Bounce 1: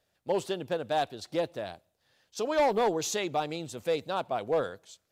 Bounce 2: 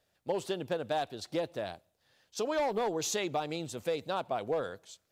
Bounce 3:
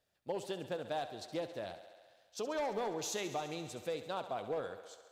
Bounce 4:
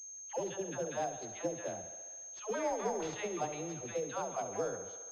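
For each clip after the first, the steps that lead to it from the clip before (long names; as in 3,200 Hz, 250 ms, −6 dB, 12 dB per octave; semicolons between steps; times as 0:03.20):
downward compressor, threshold −28 dBFS, peak gain reduction 6.5 dB
feedback echo with a high-pass in the loop 68 ms, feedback 79%, high-pass 220 Hz, level −12.5 dB; level −6 dB
all-pass dispersion lows, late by 127 ms, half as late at 620 Hz; switching amplifier with a slow clock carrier 6,400 Hz; level +1.5 dB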